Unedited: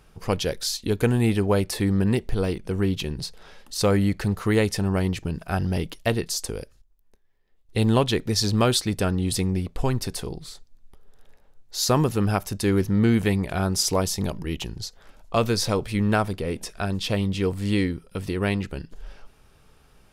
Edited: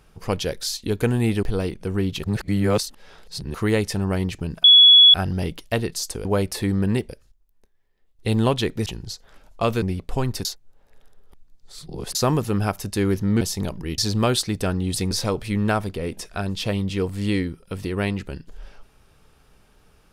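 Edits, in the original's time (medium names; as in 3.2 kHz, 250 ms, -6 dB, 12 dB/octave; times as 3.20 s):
1.43–2.27 s: move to 6.59 s
3.07–4.38 s: reverse
5.48 s: add tone 3.38 kHz -7 dBFS 0.50 s
8.36–9.49 s: swap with 14.59–15.55 s
10.12–11.82 s: reverse
13.08–14.02 s: delete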